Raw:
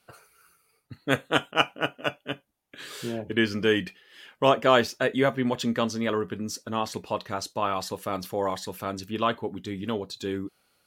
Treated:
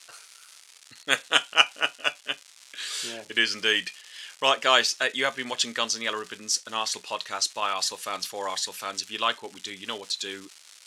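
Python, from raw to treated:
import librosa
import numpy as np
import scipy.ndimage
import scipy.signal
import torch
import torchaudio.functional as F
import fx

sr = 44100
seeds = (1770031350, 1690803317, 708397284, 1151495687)

y = fx.dmg_crackle(x, sr, seeds[0], per_s=360.0, level_db=-41.0)
y = fx.weighting(y, sr, curve='ITU-R 468')
y = y * 10.0 ** (-1.0 / 20.0)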